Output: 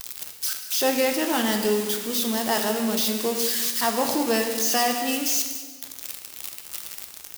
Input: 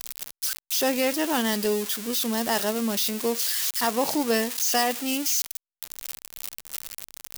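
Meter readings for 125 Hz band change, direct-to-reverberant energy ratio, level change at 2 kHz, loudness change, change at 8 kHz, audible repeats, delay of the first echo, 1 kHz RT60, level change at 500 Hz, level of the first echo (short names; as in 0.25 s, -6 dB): n/a, 3.5 dB, +1.5 dB, +1.5 dB, +1.5 dB, 1, 0.192 s, 1.5 s, +2.0 dB, -15.5 dB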